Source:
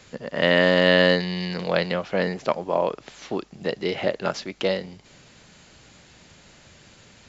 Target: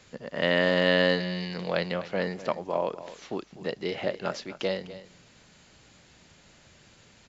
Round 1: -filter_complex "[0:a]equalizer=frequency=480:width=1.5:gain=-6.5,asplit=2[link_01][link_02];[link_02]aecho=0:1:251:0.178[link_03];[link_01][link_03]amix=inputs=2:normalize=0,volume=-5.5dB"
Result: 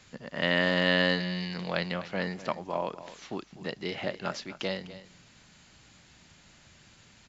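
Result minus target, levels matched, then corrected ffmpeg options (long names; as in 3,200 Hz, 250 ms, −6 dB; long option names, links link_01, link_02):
500 Hz band −3.0 dB
-filter_complex "[0:a]asplit=2[link_01][link_02];[link_02]aecho=0:1:251:0.178[link_03];[link_01][link_03]amix=inputs=2:normalize=0,volume=-5.5dB"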